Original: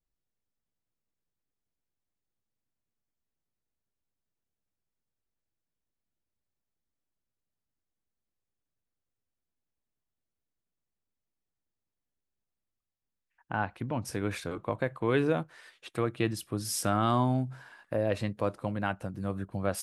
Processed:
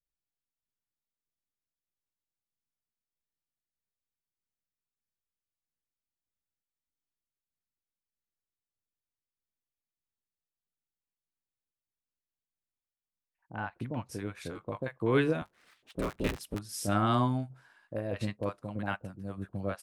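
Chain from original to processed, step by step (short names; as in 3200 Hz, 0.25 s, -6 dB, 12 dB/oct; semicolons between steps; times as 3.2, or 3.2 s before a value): 15.41–16.55 cycle switcher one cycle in 3, inverted; tremolo saw down 1.6 Hz, depth 40%; bands offset in time lows, highs 40 ms, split 700 Hz; upward expander 1.5:1, over -47 dBFS; gain +3 dB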